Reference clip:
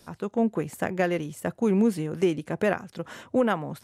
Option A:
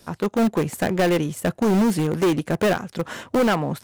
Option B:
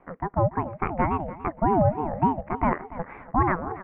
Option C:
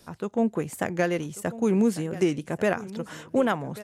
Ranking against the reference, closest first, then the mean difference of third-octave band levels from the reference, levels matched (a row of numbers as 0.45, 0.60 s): C, A, B; 2.0, 5.5, 11.5 dB